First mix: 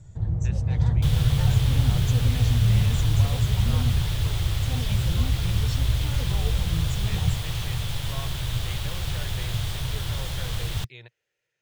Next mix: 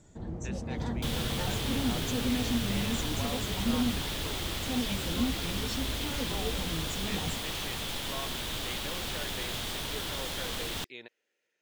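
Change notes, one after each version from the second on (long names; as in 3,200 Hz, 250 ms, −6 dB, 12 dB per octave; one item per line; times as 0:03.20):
master: add low shelf with overshoot 170 Hz −11.5 dB, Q 3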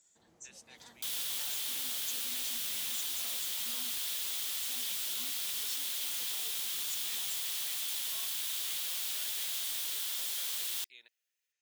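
second sound +3.5 dB
master: add first difference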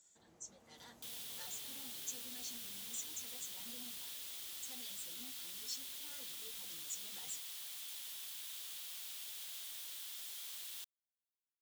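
speech: muted
second sound −11.5 dB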